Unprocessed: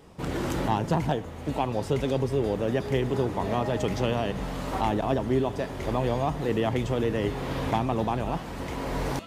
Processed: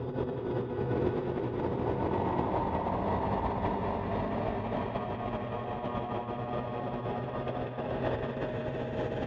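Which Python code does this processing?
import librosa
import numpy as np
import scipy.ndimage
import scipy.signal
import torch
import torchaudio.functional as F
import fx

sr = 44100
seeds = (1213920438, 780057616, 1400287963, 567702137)

p1 = fx.paulstretch(x, sr, seeds[0], factor=16.0, window_s=0.25, from_s=3.22)
p2 = fx.air_absorb(p1, sr, metres=270.0)
p3 = p2 + fx.echo_single(p2, sr, ms=1089, db=-3.5, dry=0)
p4 = fx.over_compress(p3, sr, threshold_db=-31.0, ratio=-0.5)
y = fx.echo_banded(p4, sr, ms=189, feedback_pct=76, hz=2100.0, wet_db=-6.0)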